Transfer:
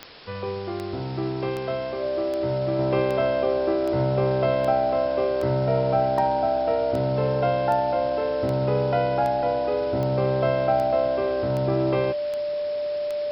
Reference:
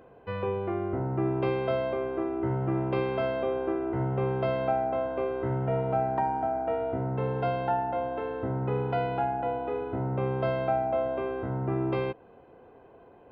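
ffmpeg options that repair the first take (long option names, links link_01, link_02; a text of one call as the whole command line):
ffmpeg -i in.wav -af "adeclick=threshold=4,bandreject=frequency=590:width=30,afwtdn=0.0089,asetnsamples=nb_out_samples=441:pad=0,asendcmd='2.79 volume volume -4.5dB',volume=0dB" out.wav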